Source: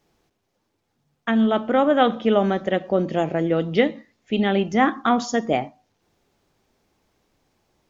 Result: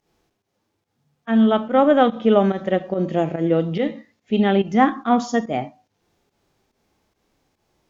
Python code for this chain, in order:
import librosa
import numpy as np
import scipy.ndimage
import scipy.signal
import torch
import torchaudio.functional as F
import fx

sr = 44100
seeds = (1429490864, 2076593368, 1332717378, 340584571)

y = fx.cheby_harmonics(x, sr, harmonics=(6,), levels_db=(-40,), full_scale_db=-4.0)
y = fx.volume_shaper(y, sr, bpm=143, per_beat=1, depth_db=-15, release_ms=122.0, shape='fast start')
y = fx.hpss(y, sr, part='harmonic', gain_db=9)
y = y * librosa.db_to_amplitude(-5.5)